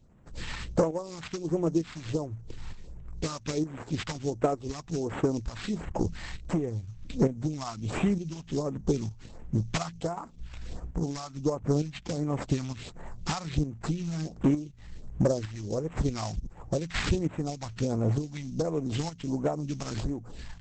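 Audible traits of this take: tremolo saw up 1.1 Hz, depth 60%; aliases and images of a low sample rate 6100 Hz, jitter 20%; phasing stages 2, 1.4 Hz, lowest notch 400–4400 Hz; Opus

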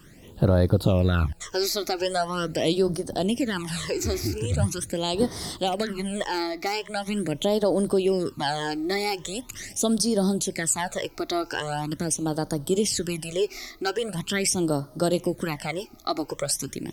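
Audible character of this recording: a quantiser's noise floor 12-bit, dither triangular; phasing stages 12, 0.42 Hz, lowest notch 160–2600 Hz

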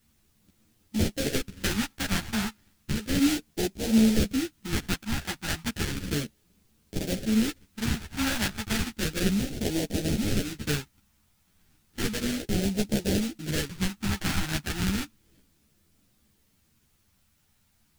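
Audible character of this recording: aliases and images of a low sample rate 1100 Hz, jitter 20%; phasing stages 2, 0.33 Hz, lowest notch 470–1100 Hz; a quantiser's noise floor 12-bit, dither triangular; a shimmering, thickened sound

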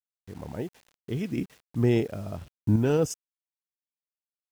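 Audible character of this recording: random-step tremolo 2.9 Hz, depth 75%; a quantiser's noise floor 10-bit, dither none

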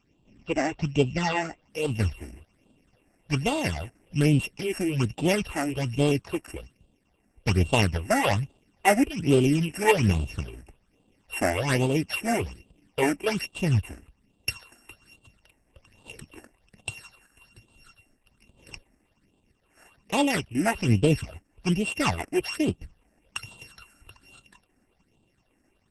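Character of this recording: a buzz of ramps at a fixed pitch in blocks of 16 samples; phasing stages 8, 1.2 Hz, lowest notch 130–1800 Hz; Opus

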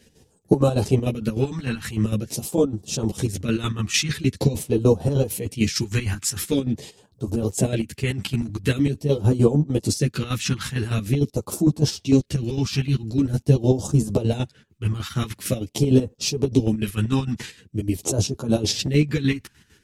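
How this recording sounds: phasing stages 2, 0.45 Hz, lowest notch 530–2000 Hz; chopped level 6.6 Hz, depth 65%, duty 50%; a shimmering, thickened sound

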